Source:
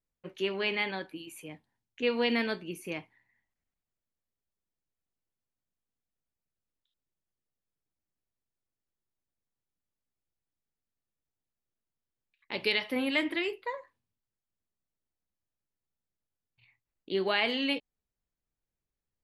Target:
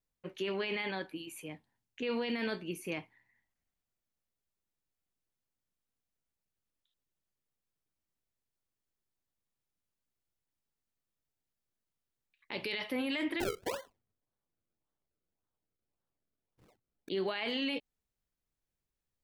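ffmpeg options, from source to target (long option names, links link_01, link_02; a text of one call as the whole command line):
ffmpeg -i in.wav -filter_complex "[0:a]alimiter=level_in=2dB:limit=-24dB:level=0:latency=1:release=20,volume=-2dB,asettb=1/sr,asplit=3[link_01][link_02][link_03];[link_01]atrim=end=13.404[link_04];[link_02]atrim=start=13.4:end=17.09,asetpts=PTS-STARTPTS,afade=type=in:duration=0.004:curve=qsin,afade=type=out:start_time=3.686:duration=0.004:curve=qsin,acrusher=samples=34:mix=1:aa=0.000001:lfo=1:lforange=34:lforate=1.8[link_05];[link_03]atrim=start=17.086[link_06];[link_04][link_05]acrossfade=duration=0.004:curve1=hsin:curve2=qsin[link_07];[link_07][link_06]acrossfade=duration=0.004:curve1=qsin:curve2=hsin" out.wav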